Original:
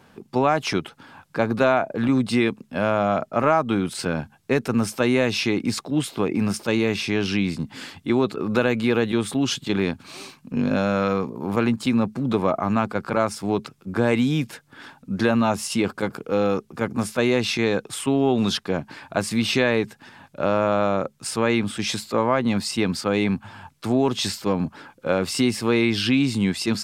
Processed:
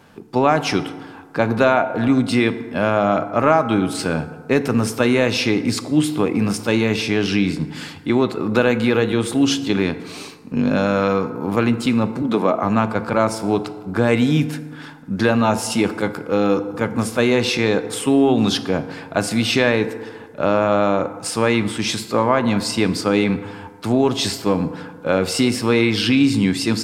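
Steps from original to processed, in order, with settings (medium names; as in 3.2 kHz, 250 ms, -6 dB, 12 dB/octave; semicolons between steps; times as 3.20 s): 12.22–12.63 s: high-pass 180 Hz 24 dB/octave; reverberation RT60 1.6 s, pre-delay 3 ms, DRR 10 dB; trim +3.5 dB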